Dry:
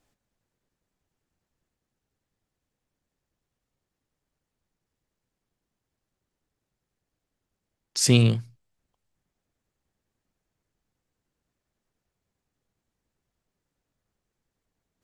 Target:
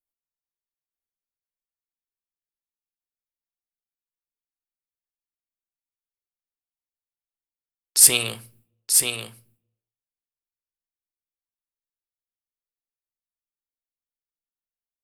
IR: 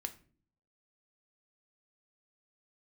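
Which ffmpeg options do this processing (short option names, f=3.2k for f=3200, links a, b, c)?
-filter_complex "[0:a]equalizer=f=150:t=o:w=0.84:g=-10.5,agate=range=-33dB:threshold=-55dB:ratio=3:detection=peak,acrossover=split=590[a][b];[a]acompressor=threshold=-40dB:ratio=6[c];[c][b]amix=inputs=2:normalize=0,aexciter=amount=12.2:drive=2:freq=9k,aeval=exprs='0.447*(abs(mod(val(0)/0.447+3,4)-2)-1)':c=same,aecho=1:1:930:0.562,asplit=2[d][e];[1:a]atrim=start_sample=2205[f];[e][f]afir=irnorm=-1:irlink=0,volume=1.5dB[g];[d][g]amix=inputs=2:normalize=0,volume=-1dB"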